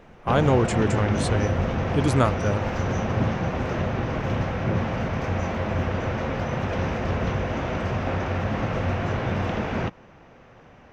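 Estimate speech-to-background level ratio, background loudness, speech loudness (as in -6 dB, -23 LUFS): 2.0 dB, -26.5 LUFS, -24.5 LUFS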